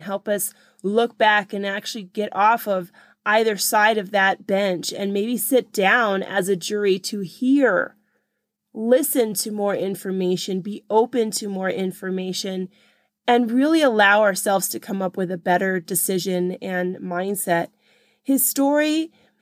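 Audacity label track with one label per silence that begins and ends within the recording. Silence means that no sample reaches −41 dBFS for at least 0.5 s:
7.900000	8.750000	silence
12.670000	13.280000	silence
17.660000	18.270000	silence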